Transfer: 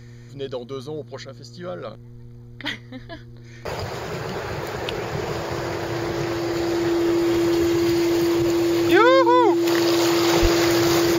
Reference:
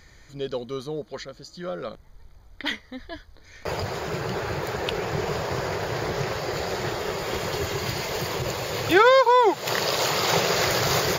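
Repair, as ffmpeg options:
-filter_complex "[0:a]bandreject=f=118.9:t=h:w=4,bandreject=f=237.8:t=h:w=4,bandreject=f=356.7:t=h:w=4,bandreject=f=475.6:t=h:w=4,bandreject=f=340:w=30,asplit=3[a][b][c];[a]afade=t=out:st=10.41:d=0.02[d];[b]highpass=f=140:w=0.5412,highpass=f=140:w=1.3066,afade=t=in:st=10.41:d=0.02,afade=t=out:st=10.53:d=0.02[e];[c]afade=t=in:st=10.53:d=0.02[f];[d][e][f]amix=inputs=3:normalize=0"

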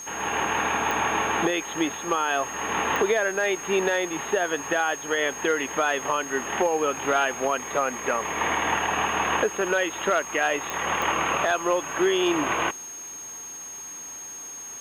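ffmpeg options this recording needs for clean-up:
-af "adeclick=t=4,bandreject=f=6.5k:w=30,afwtdn=0.0028"

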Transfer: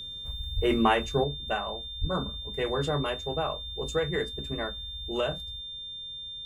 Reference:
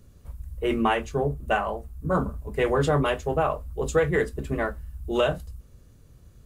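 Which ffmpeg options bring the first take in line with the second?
-filter_complex "[0:a]bandreject=f=3.6k:w=30,asplit=3[a][b][c];[a]afade=t=out:st=0.55:d=0.02[d];[b]highpass=f=140:w=0.5412,highpass=f=140:w=1.3066,afade=t=in:st=0.55:d=0.02,afade=t=out:st=0.67:d=0.02[e];[c]afade=t=in:st=0.67:d=0.02[f];[d][e][f]amix=inputs=3:normalize=0,asplit=3[g][h][i];[g]afade=t=out:st=2:d=0.02[j];[h]highpass=f=140:w=0.5412,highpass=f=140:w=1.3066,afade=t=in:st=2:d=0.02,afade=t=out:st=2.12:d=0.02[k];[i]afade=t=in:st=2.12:d=0.02[l];[j][k][l]amix=inputs=3:normalize=0,asetnsamples=n=441:p=0,asendcmd='1.24 volume volume 6.5dB',volume=0dB"

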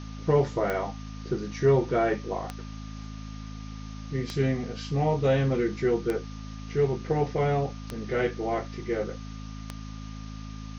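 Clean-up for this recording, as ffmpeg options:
-af "adeclick=t=4,bandreject=f=53.2:t=h:w=4,bandreject=f=106.4:t=h:w=4,bandreject=f=159.6:t=h:w=4,bandreject=f=212.8:t=h:w=4,bandreject=f=266:t=h:w=4,bandreject=f=1.2k:w=30,afwtdn=0.004"

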